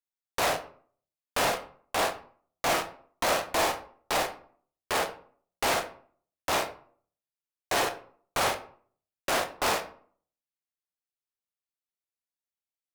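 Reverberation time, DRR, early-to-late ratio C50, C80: 0.50 s, 6.0 dB, 12.5 dB, 16.5 dB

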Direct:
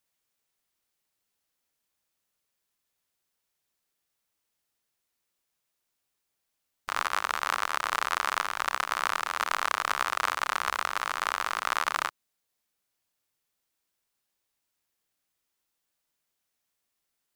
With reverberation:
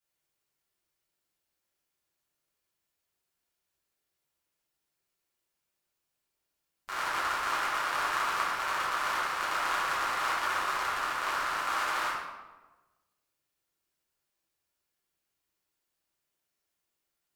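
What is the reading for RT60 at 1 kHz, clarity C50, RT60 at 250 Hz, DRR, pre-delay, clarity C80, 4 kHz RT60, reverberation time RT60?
1.2 s, 0.0 dB, 1.4 s, -10.5 dB, 5 ms, 2.5 dB, 0.75 s, 1.2 s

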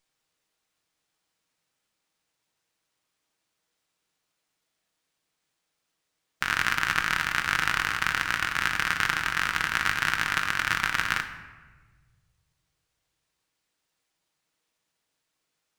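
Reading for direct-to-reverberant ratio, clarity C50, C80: 5.0 dB, 9.5 dB, 11.0 dB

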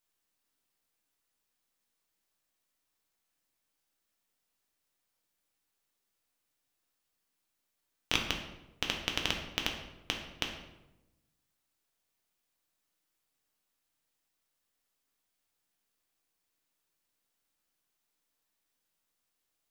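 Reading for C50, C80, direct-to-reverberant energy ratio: 5.5 dB, 8.5 dB, 1.5 dB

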